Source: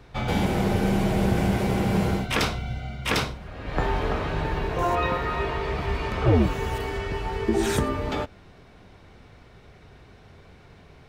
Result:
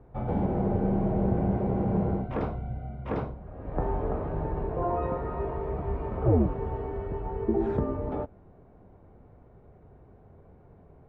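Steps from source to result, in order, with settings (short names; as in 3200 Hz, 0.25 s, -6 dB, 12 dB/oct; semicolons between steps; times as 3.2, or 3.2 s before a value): Chebyshev low-pass 700 Hz, order 2; gain -2.5 dB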